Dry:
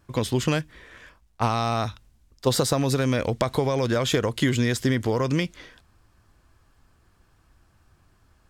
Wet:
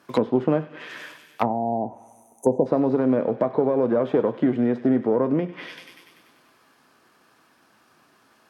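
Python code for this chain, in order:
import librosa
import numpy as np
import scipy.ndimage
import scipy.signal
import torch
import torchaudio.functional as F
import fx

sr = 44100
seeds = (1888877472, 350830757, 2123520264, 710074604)

p1 = fx.diode_clip(x, sr, knee_db=-17.5)
p2 = scipy.signal.sosfilt(scipy.signal.bessel(4, 280.0, 'highpass', norm='mag', fs=sr, output='sos'), p1)
p3 = fx.echo_wet_highpass(p2, sr, ms=97, feedback_pct=67, hz=1900.0, wet_db=-10.5)
p4 = fx.rider(p3, sr, range_db=10, speed_s=2.0)
p5 = p3 + (p4 * librosa.db_to_amplitude(1.0))
p6 = np.repeat(scipy.signal.resample_poly(p5, 1, 3), 3)[:len(p5)]
p7 = fx.brickwall_bandstop(p6, sr, low_hz=1000.0, high_hz=5900.0, at=(1.44, 2.65), fade=0.02)
p8 = fx.rev_double_slope(p7, sr, seeds[0], early_s=0.45, late_s=2.2, knee_db=-20, drr_db=10.5)
p9 = fx.env_lowpass_down(p8, sr, base_hz=680.0, full_db=-21.0)
y = p9 * librosa.db_to_amplitude(1.5)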